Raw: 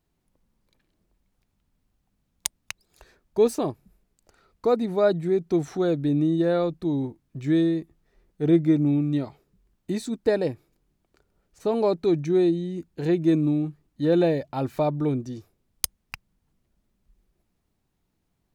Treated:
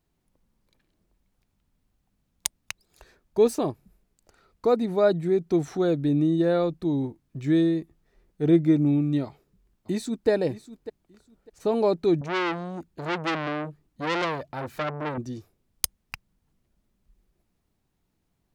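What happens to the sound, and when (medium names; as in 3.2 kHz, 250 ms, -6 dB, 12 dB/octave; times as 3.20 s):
9.25–10.29 s: echo throw 600 ms, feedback 20%, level -15 dB
12.21–15.18 s: transformer saturation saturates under 2.3 kHz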